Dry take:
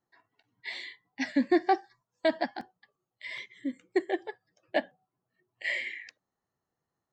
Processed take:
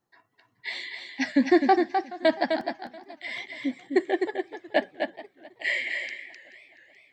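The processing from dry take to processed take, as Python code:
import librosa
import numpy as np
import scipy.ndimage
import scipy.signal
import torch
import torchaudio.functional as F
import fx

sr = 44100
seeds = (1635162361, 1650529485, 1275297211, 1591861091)

p1 = x + fx.echo_single(x, sr, ms=256, db=-5.5, dry=0)
p2 = fx.echo_warbled(p1, sr, ms=427, feedback_pct=52, rate_hz=2.8, cents=117, wet_db=-19.0)
y = p2 * librosa.db_to_amplitude(4.5)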